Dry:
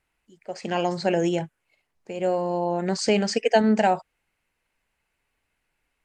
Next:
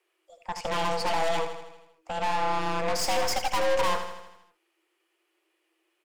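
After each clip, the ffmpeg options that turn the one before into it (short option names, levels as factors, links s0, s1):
-filter_complex "[0:a]afreqshift=320,aeval=exprs='(tanh(31.6*val(0)+0.75)-tanh(0.75))/31.6':c=same,asplit=2[s0][s1];[s1]aecho=0:1:80|160|240|320|400|480|560:0.355|0.206|0.119|0.0692|0.0402|0.0233|0.0135[s2];[s0][s2]amix=inputs=2:normalize=0,volume=1.78"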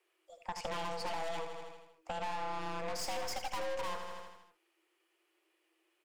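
-af "acompressor=threshold=0.0224:ratio=4,volume=0.75"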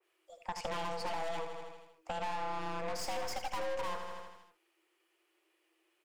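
-af "adynamicequalizer=threshold=0.00178:dfrequency=2400:dqfactor=0.7:tfrequency=2400:tqfactor=0.7:attack=5:release=100:ratio=0.375:range=1.5:mode=cutabove:tftype=highshelf,volume=1.12"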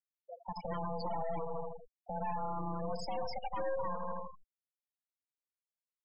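-af "equalizer=f=170:t=o:w=0.82:g=8,alimiter=level_in=3.16:limit=0.0631:level=0:latency=1:release=175,volume=0.316,afftfilt=real='re*gte(hypot(re,im),0.0112)':imag='im*gte(hypot(re,im),0.0112)':win_size=1024:overlap=0.75,volume=2.11"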